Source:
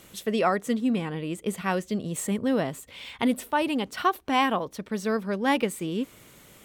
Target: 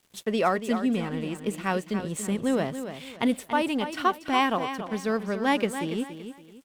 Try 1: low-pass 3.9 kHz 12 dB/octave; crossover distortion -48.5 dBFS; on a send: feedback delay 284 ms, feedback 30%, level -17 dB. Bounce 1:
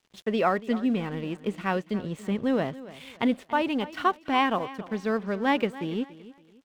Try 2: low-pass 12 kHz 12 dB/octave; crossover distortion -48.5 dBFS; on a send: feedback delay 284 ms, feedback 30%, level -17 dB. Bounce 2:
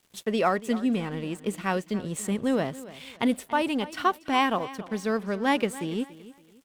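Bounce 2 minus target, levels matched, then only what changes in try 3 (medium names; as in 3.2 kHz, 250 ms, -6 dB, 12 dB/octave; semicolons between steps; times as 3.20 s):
echo-to-direct -7 dB
change: feedback delay 284 ms, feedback 30%, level -10 dB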